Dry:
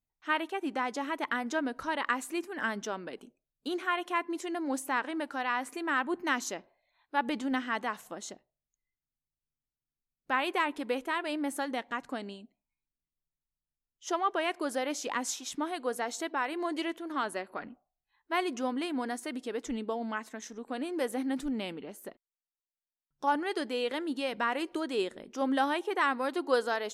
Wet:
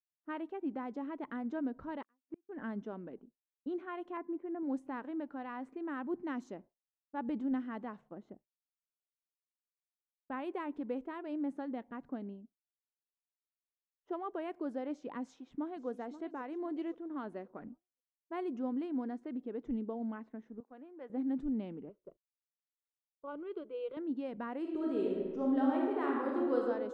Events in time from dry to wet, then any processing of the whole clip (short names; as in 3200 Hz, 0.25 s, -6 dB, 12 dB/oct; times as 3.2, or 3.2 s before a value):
2.02–2.49 flipped gate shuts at -28 dBFS, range -37 dB
4.17–4.63 LPF 2100 Hz 24 dB/oct
15.23–15.88 echo throw 0.53 s, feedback 45%, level -13 dB
20.6–21.1 HPF 1400 Hz 6 dB/oct
21.89–23.97 fixed phaser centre 1200 Hz, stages 8
24.6–26.57 reverb throw, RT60 1.5 s, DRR -2.5 dB
whole clip: expander -44 dBFS; low-pass opened by the level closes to 1100 Hz, open at -26 dBFS; EQ curve 220 Hz 0 dB, 4900 Hz -26 dB, 12000 Hz -29 dB